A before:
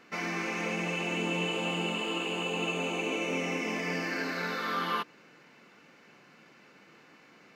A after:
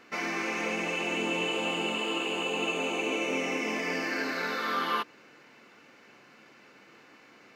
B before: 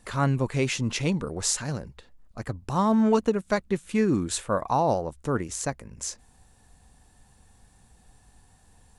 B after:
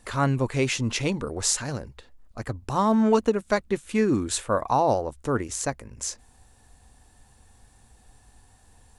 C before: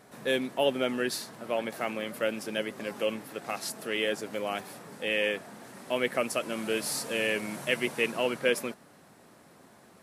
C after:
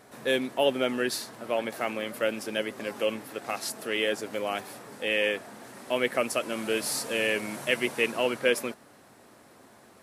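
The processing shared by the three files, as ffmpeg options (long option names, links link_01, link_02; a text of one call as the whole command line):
ffmpeg -i in.wav -af "equalizer=frequency=170:width=4.5:gain=-10,volume=2dB" out.wav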